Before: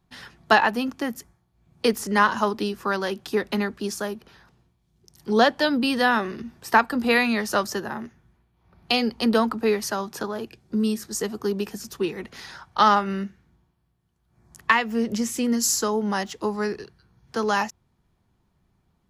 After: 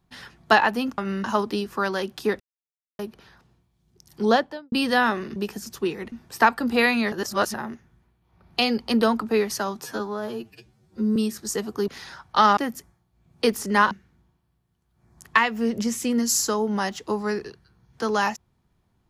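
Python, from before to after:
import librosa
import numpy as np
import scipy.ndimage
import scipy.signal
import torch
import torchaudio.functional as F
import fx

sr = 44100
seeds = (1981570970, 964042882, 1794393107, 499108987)

y = fx.studio_fade_out(x, sr, start_s=5.31, length_s=0.49)
y = fx.edit(y, sr, fx.swap(start_s=0.98, length_s=1.34, other_s=12.99, other_length_s=0.26),
    fx.silence(start_s=3.48, length_s=0.59),
    fx.reverse_span(start_s=7.44, length_s=0.42),
    fx.stretch_span(start_s=10.16, length_s=0.66, factor=2.0),
    fx.move(start_s=11.54, length_s=0.76, to_s=6.44), tone=tone)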